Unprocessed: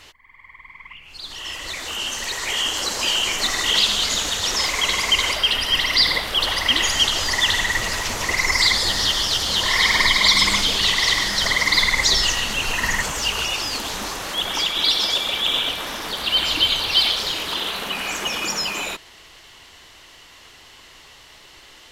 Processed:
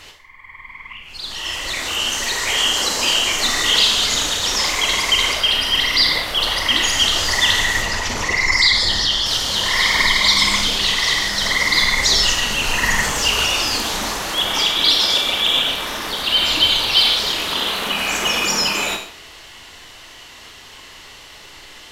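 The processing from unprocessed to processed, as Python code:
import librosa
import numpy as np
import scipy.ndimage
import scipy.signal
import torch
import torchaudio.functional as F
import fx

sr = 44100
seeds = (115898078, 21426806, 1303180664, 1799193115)

y = fx.envelope_sharpen(x, sr, power=1.5, at=(7.82, 9.26))
y = fx.rev_schroeder(y, sr, rt60_s=0.51, comb_ms=26, drr_db=4.0)
y = fx.rider(y, sr, range_db=3, speed_s=2.0)
y = F.gain(torch.from_numpy(y), 1.5).numpy()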